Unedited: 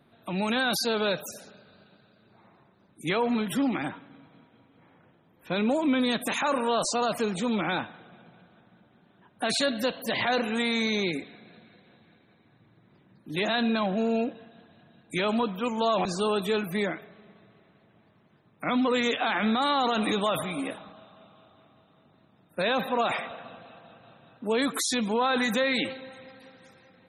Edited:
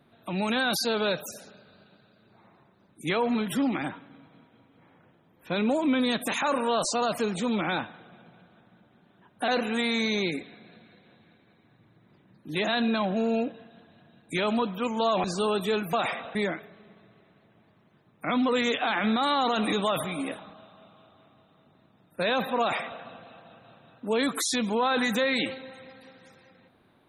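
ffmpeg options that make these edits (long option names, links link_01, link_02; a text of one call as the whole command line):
ffmpeg -i in.wav -filter_complex "[0:a]asplit=4[link_01][link_02][link_03][link_04];[link_01]atrim=end=9.482[link_05];[link_02]atrim=start=10.288:end=16.742[link_06];[link_03]atrim=start=22.988:end=23.412[link_07];[link_04]atrim=start=16.738[link_08];[link_05][link_06]acrossfade=duration=0.004:curve1=hsin:curve2=hsin[link_09];[link_09][link_07]acrossfade=duration=0.004:curve1=hsin:curve2=hsin[link_10];[link_10][link_08]acrossfade=duration=0.004:curve1=hsin:curve2=hsin" out.wav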